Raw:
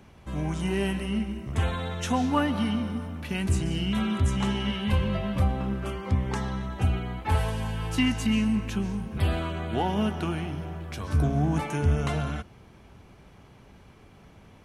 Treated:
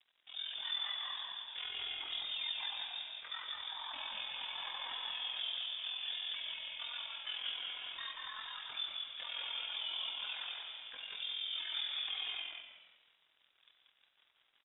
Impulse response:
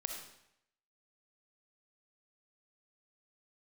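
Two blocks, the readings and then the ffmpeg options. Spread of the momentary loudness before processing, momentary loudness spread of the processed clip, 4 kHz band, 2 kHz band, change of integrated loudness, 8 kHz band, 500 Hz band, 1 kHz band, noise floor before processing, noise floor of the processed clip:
7 LU, 6 LU, +3.0 dB, −8.5 dB, −11.5 dB, below −35 dB, −29.5 dB, −17.0 dB, −53 dBFS, −75 dBFS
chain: -filter_complex "[0:a]highpass=frequency=320:width=0.5412,highpass=frequency=320:width=1.3066,equalizer=frequency=1100:width=0.68:gain=-6.5,aecho=1:1:7.4:0.81,alimiter=level_in=3dB:limit=-24dB:level=0:latency=1:release=129,volume=-3dB,flanger=delay=5.7:depth=2.7:regen=67:speed=0.49:shape=sinusoidal,asplit=2[link_01][link_02];[link_02]highpass=frequency=720:poles=1,volume=12dB,asoftclip=type=tanh:threshold=-27.5dB[link_03];[link_01][link_03]amix=inputs=2:normalize=0,lowpass=frequency=1100:poles=1,volume=-6dB,aeval=exprs='sgn(val(0))*max(abs(val(0))-0.00112,0)':channel_layout=same,aeval=exprs='val(0)*sin(2*PI*21*n/s)':channel_layout=same,lowpass=frequency=3300:width_type=q:width=0.5098,lowpass=frequency=3300:width_type=q:width=0.6013,lowpass=frequency=3300:width_type=q:width=0.9,lowpass=frequency=3300:width_type=q:width=2.563,afreqshift=-3900,asplit=5[link_04][link_05][link_06][link_07][link_08];[link_05]adelay=184,afreqshift=-72,volume=-3.5dB[link_09];[link_06]adelay=368,afreqshift=-144,volume=-13.1dB[link_10];[link_07]adelay=552,afreqshift=-216,volume=-22.8dB[link_11];[link_08]adelay=736,afreqshift=-288,volume=-32.4dB[link_12];[link_04][link_09][link_10][link_11][link_12]amix=inputs=5:normalize=0,asplit=2[link_13][link_14];[1:a]atrim=start_sample=2205[link_15];[link_14][link_15]afir=irnorm=-1:irlink=0,volume=2dB[link_16];[link_13][link_16]amix=inputs=2:normalize=0,volume=-5dB"

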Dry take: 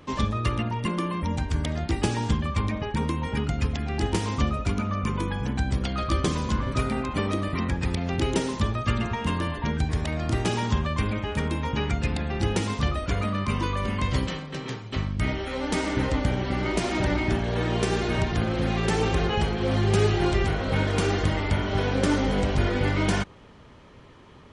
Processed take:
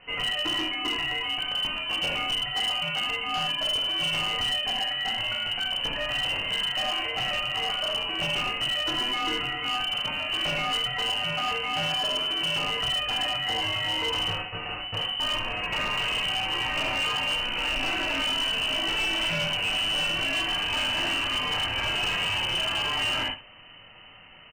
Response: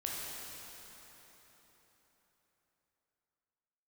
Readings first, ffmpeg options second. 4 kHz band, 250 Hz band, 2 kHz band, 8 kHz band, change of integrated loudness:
+13.0 dB, −13.5 dB, +5.0 dB, −1.0 dB, +1.0 dB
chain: -filter_complex "[0:a]lowpass=frequency=2600:width_type=q:width=0.5098,lowpass=frequency=2600:width_type=q:width=0.6013,lowpass=frequency=2600:width_type=q:width=0.9,lowpass=frequency=2600:width_type=q:width=2.563,afreqshift=-3100,lowshelf=frequency=62:gain=12[link_01];[1:a]atrim=start_sample=2205,afade=type=out:start_time=0.25:duration=0.01,atrim=end_sample=11466,asetrate=74970,aresample=44100[link_02];[link_01][link_02]afir=irnorm=-1:irlink=0,asplit=2[link_03][link_04];[link_04]asoftclip=type=tanh:threshold=-29dB,volume=-9.5dB[link_05];[link_03][link_05]amix=inputs=2:normalize=0,tiltshelf=frequency=1300:gain=9.5,alimiter=limit=-22dB:level=0:latency=1:release=140,aecho=1:1:70:0.211,volume=28.5dB,asoftclip=hard,volume=-28.5dB,volume=5.5dB"

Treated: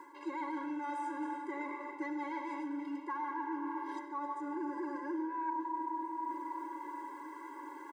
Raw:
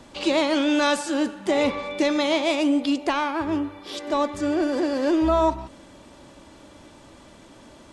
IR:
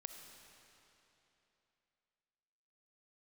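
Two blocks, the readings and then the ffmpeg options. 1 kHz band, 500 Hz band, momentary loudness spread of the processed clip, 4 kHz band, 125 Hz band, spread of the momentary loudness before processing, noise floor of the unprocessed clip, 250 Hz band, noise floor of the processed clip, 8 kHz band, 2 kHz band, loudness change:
−8.5 dB, −23.0 dB, 6 LU, below −30 dB, below −35 dB, 7 LU, −49 dBFS, −16.0 dB, −49 dBFS, below −25 dB, −16.0 dB, −16.5 dB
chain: -filter_complex "[0:a]aecho=1:1:1:0.93[link_01];[1:a]atrim=start_sample=2205[link_02];[link_01][link_02]afir=irnorm=-1:irlink=0,asoftclip=type=tanh:threshold=-18dB,acrusher=bits=9:mix=0:aa=0.000001,highshelf=frequency=2300:width_type=q:width=3:gain=-13,areverse,acompressor=threshold=-42dB:ratio=6,areverse,afftfilt=real='re*eq(mod(floor(b*sr/1024/280),2),1)':imag='im*eq(mod(floor(b*sr/1024/280),2),1)':win_size=1024:overlap=0.75,volume=6.5dB"

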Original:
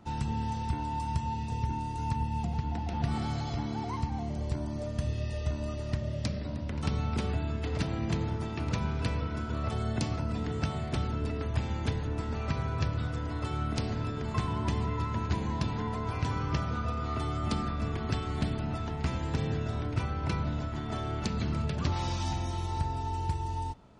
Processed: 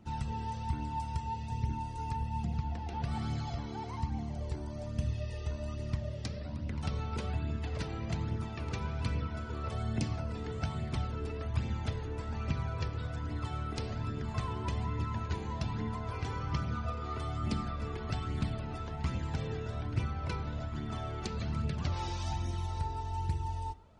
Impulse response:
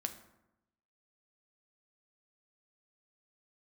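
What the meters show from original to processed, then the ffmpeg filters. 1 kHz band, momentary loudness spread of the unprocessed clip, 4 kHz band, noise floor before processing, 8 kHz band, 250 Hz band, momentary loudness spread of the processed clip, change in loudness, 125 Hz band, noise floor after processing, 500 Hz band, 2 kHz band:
−4.0 dB, 3 LU, −4.5 dB, −36 dBFS, −4.5 dB, −5.5 dB, 3 LU, −3.5 dB, −3.5 dB, −40 dBFS, −4.5 dB, −4.0 dB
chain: -filter_complex "[0:a]asplit=2[link_01][link_02];[1:a]atrim=start_sample=2205[link_03];[link_02][link_03]afir=irnorm=-1:irlink=0,volume=-9dB[link_04];[link_01][link_04]amix=inputs=2:normalize=0,flanger=delay=0.3:depth=2.3:regen=35:speed=1.2:shape=triangular,volume=-3dB"

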